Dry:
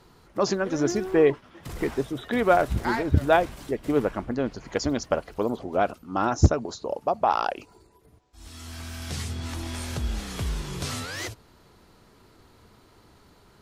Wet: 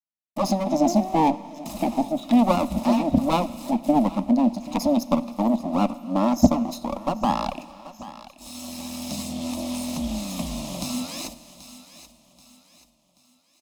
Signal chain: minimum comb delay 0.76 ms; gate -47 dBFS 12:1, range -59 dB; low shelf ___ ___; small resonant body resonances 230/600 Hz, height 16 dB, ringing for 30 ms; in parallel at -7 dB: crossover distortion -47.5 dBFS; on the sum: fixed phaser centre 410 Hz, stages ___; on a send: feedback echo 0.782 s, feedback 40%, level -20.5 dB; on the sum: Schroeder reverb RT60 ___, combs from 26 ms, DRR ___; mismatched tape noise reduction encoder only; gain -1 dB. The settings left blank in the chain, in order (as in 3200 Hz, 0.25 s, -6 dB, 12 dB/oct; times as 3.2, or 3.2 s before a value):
260 Hz, -7.5 dB, 6, 1.6 s, 18 dB